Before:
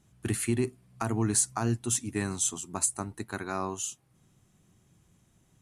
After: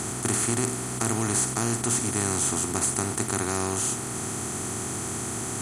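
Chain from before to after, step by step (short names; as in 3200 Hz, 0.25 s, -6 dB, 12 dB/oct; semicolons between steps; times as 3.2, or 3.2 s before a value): per-bin compression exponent 0.2; gain -4 dB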